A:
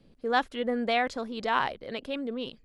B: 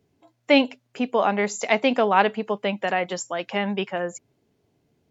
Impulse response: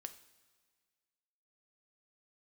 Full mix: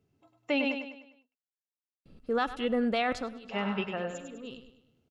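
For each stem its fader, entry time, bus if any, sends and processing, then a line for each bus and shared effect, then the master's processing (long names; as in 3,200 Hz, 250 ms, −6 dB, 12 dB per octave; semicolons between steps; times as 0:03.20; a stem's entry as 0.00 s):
−0.5 dB, 2.05 s, no send, echo send −20.5 dB, noise gate with hold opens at −56 dBFS; automatic ducking −19 dB, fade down 0.30 s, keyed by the second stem
−9.5 dB, 0.00 s, muted 0:00.75–0:03.49, no send, echo send −7 dB, no processing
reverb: not used
echo: repeating echo 101 ms, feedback 44%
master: low-shelf EQ 240 Hz +6.5 dB; hollow resonant body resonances 1,300/2,700 Hz, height 14 dB, ringing for 55 ms; brickwall limiter −18.5 dBFS, peak gain reduction 8 dB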